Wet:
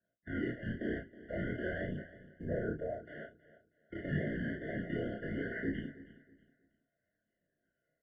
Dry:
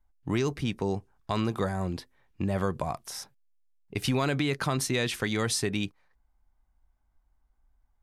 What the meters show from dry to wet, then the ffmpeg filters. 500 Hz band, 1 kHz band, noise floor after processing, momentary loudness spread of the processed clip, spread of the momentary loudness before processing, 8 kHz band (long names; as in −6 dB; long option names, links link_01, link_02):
−7.5 dB, −18.0 dB, below −85 dBFS, 12 LU, 10 LU, below −40 dB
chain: -filter_complex "[0:a]aemphasis=mode=reproduction:type=75fm,asplit=2[link_01][link_02];[link_02]acompressor=threshold=-39dB:ratio=6,volume=1.5dB[link_03];[link_01][link_03]amix=inputs=2:normalize=0,alimiter=limit=-22dB:level=0:latency=1:release=22,acrusher=samples=17:mix=1:aa=0.000001:lfo=1:lforange=27.2:lforate=0.28,flanger=delay=0.2:depth=9.6:regen=-64:speed=0.4:shape=sinusoidal,highpass=frequency=210:width_type=q:width=0.5412,highpass=frequency=210:width_type=q:width=1.307,lowpass=frequency=2300:width_type=q:width=0.5176,lowpass=frequency=2300:width_type=q:width=0.7071,lowpass=frequency=2300:width_type=q:width=1.932,afreqshift=-74,afftfilt=real='hypot(re,im)*cos(2*PI*random(0))':imag='hypot(re,im)*sin(2*PI*random(1))':win_size=512:overlap=0.75,crystalizer=i=5:c=0,flanger=delay=17.5:depth=6.6:speed=0.9,asplit=2[link_04][link_05];[link_05]adelay=33,volume=-3dB[link_06];[link_04][link_06]amix=inputs=2:normalize=0,aecho=1:1:320|640|960:0.133|0.0387|0.0112,afftfilt=real='re*eq(mod(floor(b*sr/1024/710),2),0)':imag='im*eq(mod(floor(b*sr/1024/710),2),0)':win_size=1024:overlap=0.75,volume=7dB"